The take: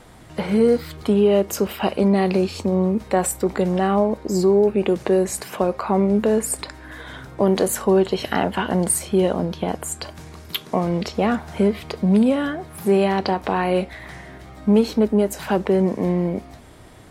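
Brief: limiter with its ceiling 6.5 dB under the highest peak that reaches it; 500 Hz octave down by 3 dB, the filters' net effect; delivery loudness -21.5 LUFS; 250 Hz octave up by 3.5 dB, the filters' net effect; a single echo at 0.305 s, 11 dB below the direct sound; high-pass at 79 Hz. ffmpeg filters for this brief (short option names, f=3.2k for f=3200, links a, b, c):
-af "highpass=79,equalizer=f=250:t=o:g=6.5,equalizer=f=500:t=o:g=-7,alimiter=limit=-11dB:level=0:latency=1,aecho=1:1:305:0.282,volume=-0.5dB"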